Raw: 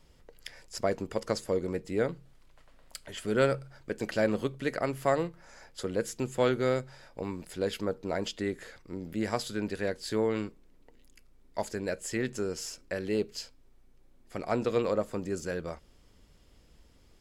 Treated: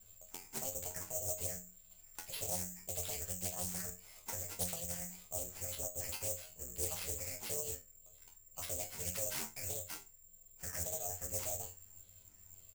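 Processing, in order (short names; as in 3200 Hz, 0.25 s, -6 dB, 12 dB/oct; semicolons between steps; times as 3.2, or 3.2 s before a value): octaver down 2 oct, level -3 dB; high shelf 3800 Hz +9.5 dB; comb 2.3 ms, depth 89%; compressor 12:1, threshold -28 dBFS, peak gain reduction 13 dB; phaser stages 6, 1.3 Hz, lowest notch 610–1500 Hz; resonator 66 Hz, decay 0.35 s, harmonics all, mix 100%; speed mistake 33 rpm record played at 45 rpm; careless resampling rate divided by 6×, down none, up zero stuff; Doppler distortion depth 0.8 ms; gain -3.5 dB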